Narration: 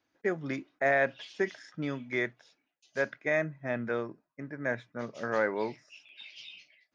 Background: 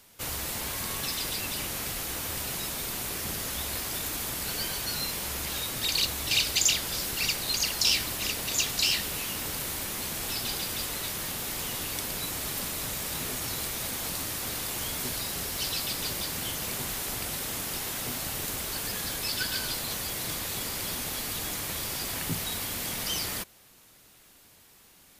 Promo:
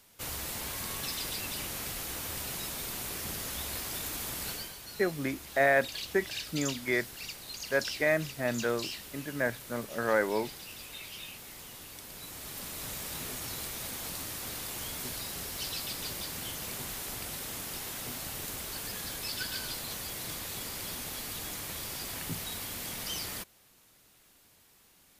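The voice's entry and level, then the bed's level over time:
4.75 s, +1.5 dB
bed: 4.49 s -4 dB
4.76 s -13.5 dB
12.01 s -13.5 dB
12.9 s -5.5 dB

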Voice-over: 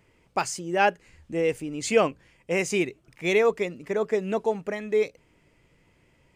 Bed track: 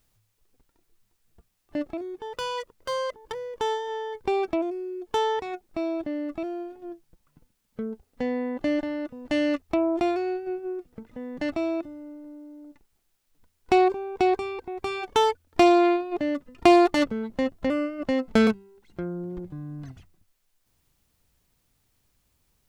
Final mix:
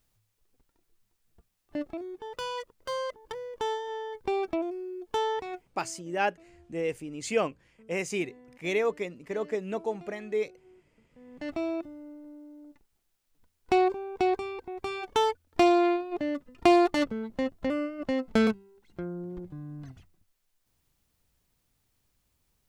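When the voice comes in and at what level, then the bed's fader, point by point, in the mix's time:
5.40 s, -6.0 dB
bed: 5.6 s -4 dB
5.91 s -25 dB
10.97 s -25 dB
11.57 s -4 dB

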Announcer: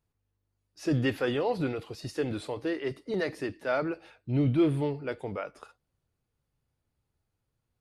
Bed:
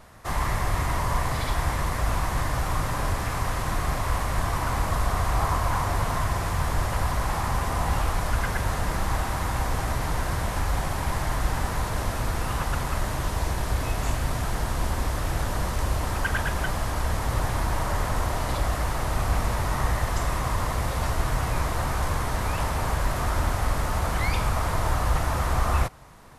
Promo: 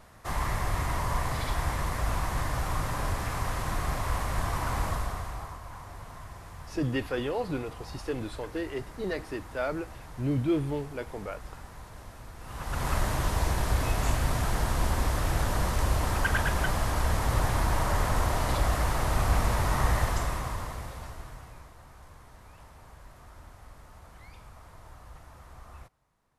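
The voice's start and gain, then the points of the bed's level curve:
5.90 s, -2.5 dB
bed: 4.87 s -4 dB
5.59 s -18.5 dB
12.37 s -18.5 dB
12.88 s -0.5 dB
20.02 s -0.5 dB
21.76 s -25 dB

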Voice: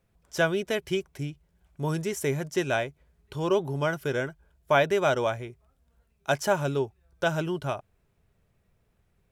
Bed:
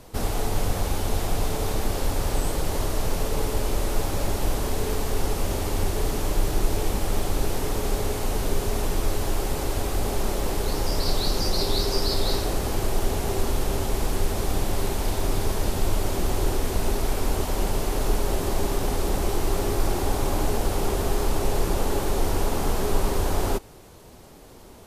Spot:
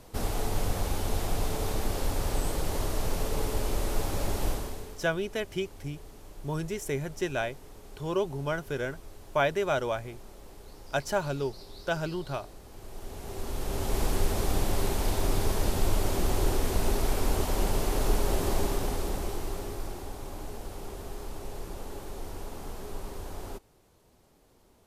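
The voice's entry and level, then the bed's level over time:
4.65 s, -4.0 dB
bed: 4.49 s -4.5 dB
5.08 s -23 dB
12.67 s -23 dB
13.99 s -2.5 dB
18.54 s -2.5 dB
20.14 s -15.5 dB

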